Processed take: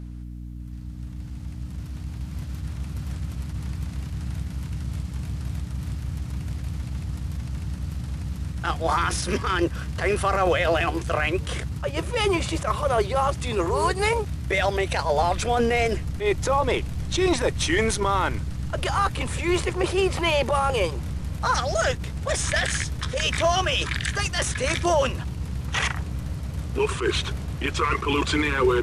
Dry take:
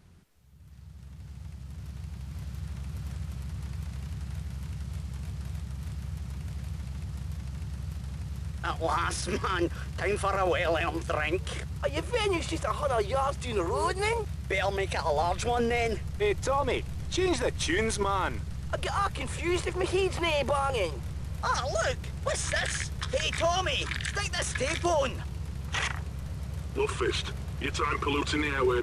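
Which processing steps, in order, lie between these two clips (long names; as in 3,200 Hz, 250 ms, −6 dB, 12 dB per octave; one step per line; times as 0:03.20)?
mains hum 60 Hz, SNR 11 dB
level that may rise only so fast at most 140 dB per second
level +5.5 dB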